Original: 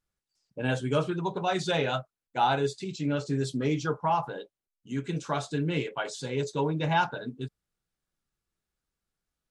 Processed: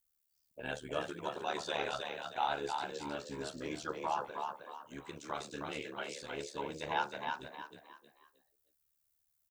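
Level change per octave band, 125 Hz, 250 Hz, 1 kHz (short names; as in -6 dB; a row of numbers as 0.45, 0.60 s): -21.5, -14.5, -7.5 dB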